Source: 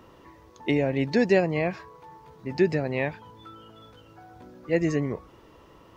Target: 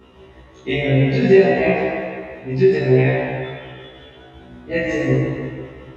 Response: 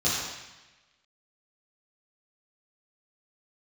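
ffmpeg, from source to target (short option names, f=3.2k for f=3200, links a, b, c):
-filter_complex "[0:a]tremolo=f=5.5:d=0.65[a];[1:a]atrim=start_sample=2205,asetrate=23814,aresample=44100[b];[a][b]afir=irnorm=-1:irlink=0,afftfilt=real='re*1.73*eq(mod(b,3),0)':imag='im*1.73*eq(mod(b,3),0)':win_size=2048:overlap=0.75,volume=-4.5dB"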